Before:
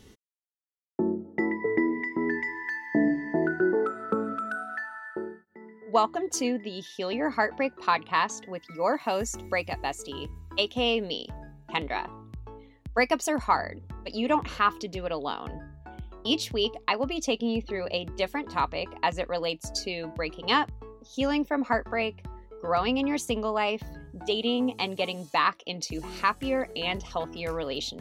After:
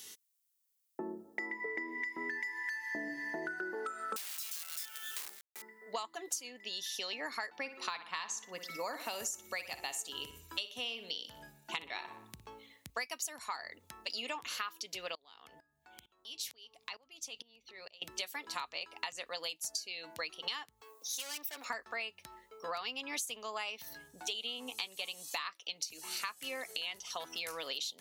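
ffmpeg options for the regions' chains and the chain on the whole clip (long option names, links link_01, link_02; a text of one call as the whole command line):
ffmpeg -i in.wav -filter_complex "[0:a]asettb=1/sr,asplit=3[link_01][link_02][link_03];[link_01]atrim=end=4.164[link_04];[link_02]atrim=start=4.16:end=5.62,asetpts=PTS-STARTPTS,afade=type=in:duration=0.004:curve=qsin,afade=type=out:start_time=1.456:duration=0.004:curve=qsin,aeval=exprs='(mod(39.8*val(0)+1,2)-1)/39.8':channel_layout=same,acrusher=bits=6:dc=4:mix=0:aa=0.000001[link_05];[link_03]atrim=start=5.616[link_06];[link_04][link_05]acrossfade=duration=0.004:curve1=hsin:curve2=qsin[link_07];[link_07][link_06]acrossfade=duration=0.004:curve1=qsin:curve2=hsin,asettb=1/sr,asplit=3[link_08][link_09][link_10];[link_08]atrim=end=7.594[link_11];[link_09]atrim=start=7.59:end=12.9,asetpts=PTS-STARTPTS,afade=type=in:duration=0.004:curve=qsin,afade=type=out:start_time=5.306:duration=0.004:curve=qsin,highpass=52,lowshelf=frequency=280:gain=9,asplit=2[link_12][link_13];[link_13]adelay=60,lowpass=frequency=3000:poles=1,volume=-11.5dB,asplit=2[link_14][link_15];[link_15]adelay=60,lowpass=frequency=3000:poles=1,volume=0.49,asplit=2[link_16][link_17];[link_17]adelay=60,lowpass=frequency=3000:poles=1,volume=0.49,asplit=2[link_18][link_19];[link_19]adelay=60,lowpass=frequency=3000:poles=1,volume=0.49,asplit=2[link_20][link_21];[link_21]adelay=60,lowpass=frequency=3000:poles=1,volume=0.49[link_22];[link_12][link_14][link_16][link_18][link_20][link_22]amix=inputs=6:normalize=0,atrim=end_sample=234171[link_23];[link_10]atrim=start=12.896[link_24];[link_11][link_23]acrossfade=duration=0.004:curve1=hsin:curve2=qsin[link_25];[link_25][link_24]acrossfade=duration=0.004:curve1=qsin:curve2=hsin,asettb=1/sr,asplit=3[link_26][link_27][link_28];[link_26]atrim=end=15.154[link_29];[link_27]atrim=start=15.15:end=18.02,asetpts=PTS-STARTPTS,afade=type=in:duration=0.004:curve=qsin,afade=type=out:start_time=2.866:duration=0.004:curve=qsin,acompressor=threshold=-43dB:ratio=3:attack=3.2:release=140:knee=1:detection=peak,aeval=exprs='val(0)+0.002*(sin(2*PI*50*n/s)+sin(2*PI*2*50*n/s)/2+sin(2*PI*3*50*n/s)/3+sin(2*PI*4*50*n/s)/4+sin(2*PI*5*50*n/s)/5)':channel_layout=same,aeval=exprs='val(0)*pow(10,-21*if(lt(mod(-2.2*n/s,1),2*abs(-2.2)/1000),1-mod(-2.2*n/s,1)/(2*abs(-2.2)/1000),(mod(-2.2*n/s,1)-2*abs(-2.2)/1000)/(1-2*abs(-2.2)/1000))/20)':channel_layout=same[link_30];[link_28]atrim=start=18.016[link_31];[link_29][link_30]acrossfade=duration=0.004:curve1=hsin:curve2=qsin[link_32];[link_32][link_31]acrossfade=duration=0.004:curve1=qsin:curve2=hsin,asettb=1/sr,asplit=3[link_33][link_34][link_35];[link_33]atrim=end=20.814[link_36];[link_34]atrim=start=20.81:end=21.65,asetpts=PTS-STARTPTS,afade=type=in:duration=0.004:curve=qsin,afade=type=out:start_time=0.836:duration=0.004:curve=qsin,highpass=frequency=320:width=0.5412,highpass=frequency=320:width=1.3066,aemphasis=mode=production:type=50kf,aeval=exprs='(tanh(44.7*val(0)+0.4)-tanh(0.4))/44.7':channel_layout=same[link_37];[link_35]atrim=start=21.646[link_38];[link_36][link_37]acrossfade=duration=0.004:curve1=hsin:curve2=qsin[link_39];[link_39][link_38]acrossfade=duration=0.004:curve1=qsin:curve2=hsin,aderivative,acompressor=threshold=-50dB:ratio=10,volume=14dB" out.wav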